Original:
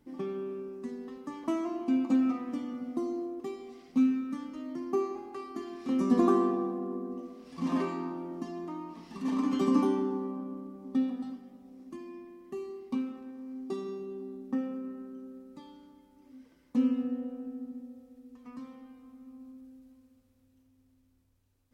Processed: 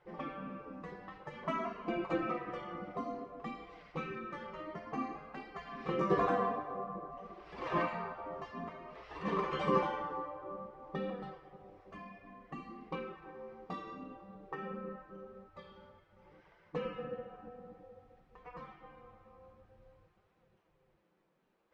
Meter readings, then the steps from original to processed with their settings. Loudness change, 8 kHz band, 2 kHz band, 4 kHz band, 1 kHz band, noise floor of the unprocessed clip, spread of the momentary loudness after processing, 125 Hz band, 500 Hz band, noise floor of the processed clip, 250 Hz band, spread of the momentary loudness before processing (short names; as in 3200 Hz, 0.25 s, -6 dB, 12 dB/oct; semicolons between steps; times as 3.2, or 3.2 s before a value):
-7.0 dB, n/a, +5.5 dB, -0.5 dB, +2.0 dB, -67 dBFS, 20 LU, 0.0 dB, -3.5 dB, -74 dBFS, -13.0 dB, 21 LU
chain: flange 0.54 Hz, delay 3.7 ms, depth 7.7 ms, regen -21%; dynamic EQ 830 Hz, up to -7 dB, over -56 dBFS, Q 2.2; spectral gate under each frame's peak -15 dB weak; LPF 2000 Hz 12 dB/oct; gain +12.5 dB